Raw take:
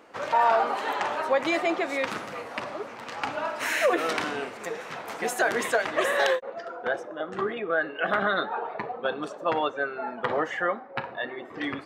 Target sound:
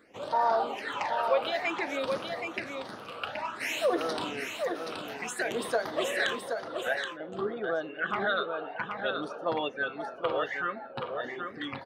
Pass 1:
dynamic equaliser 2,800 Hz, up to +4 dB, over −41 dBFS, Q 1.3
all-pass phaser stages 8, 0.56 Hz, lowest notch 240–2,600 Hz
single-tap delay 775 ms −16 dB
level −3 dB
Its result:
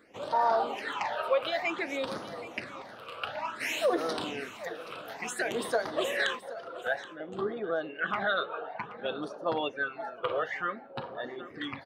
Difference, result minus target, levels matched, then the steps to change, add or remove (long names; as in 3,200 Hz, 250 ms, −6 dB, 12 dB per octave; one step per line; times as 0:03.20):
echo-to-direct −10.5 dB
change: single-tap delay 775 ms −5.5 dB